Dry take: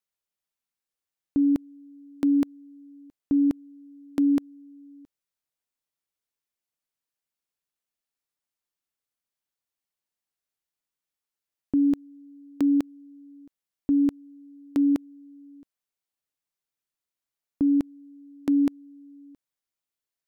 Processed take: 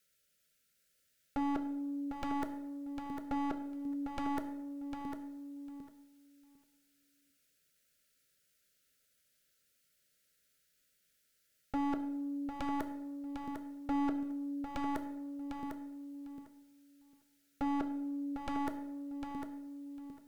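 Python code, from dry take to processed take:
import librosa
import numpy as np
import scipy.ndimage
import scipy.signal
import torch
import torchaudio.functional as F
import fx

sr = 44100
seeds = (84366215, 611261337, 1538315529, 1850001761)

y = scipy.signal.sosfilt(scipy.signal.cheby1(5, 1.0, [630.0, 1300.0], 'bandstop', fs=sr, output='sos'), x)
y = fx.peak_eq(y, sr, hz=330.0, db=-5.5, octaves=0.38)
y = fx.over_compress(y, sr, threshold_db=-32.0, ratio=-1.0)
y = fx.tube_stage(y, sr, drive_db=29.0, bias=0.4)
y = 10.0 ** (-36.0 / 20.0) * (np.abs((y / 10.0 ** (-36.0 / 20.0) + 3.0) % 4.0 - 2.0) - 1.0)
y = fx.echo_feedback(y, sr, ms=751, feedback_pct=15, wet_db=-7)
y = fx.rev_plate(y, sr, seeds[0], rt60_s=0.8, hf_ratio=0.8, predelay_ms=0, drr_db=7.5)
y = F.gain(torch.from_numpy(y), 6.5).numpy()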